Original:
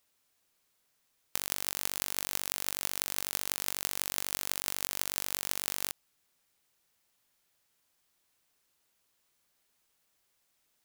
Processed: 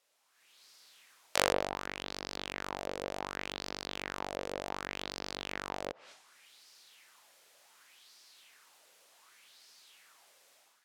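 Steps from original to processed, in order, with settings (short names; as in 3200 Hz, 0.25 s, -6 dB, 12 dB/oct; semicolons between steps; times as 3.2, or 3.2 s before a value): weighting filter A; treble ducked by the level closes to 380 Hz, closed at -38 dBFS; low shelf 90 Hz +6 dB; transient shaper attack -10 dB, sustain +12 dB; AGC gain up to 13.5 dB; LFO bell 0.67 Hz 500–5000 Hz +11 dB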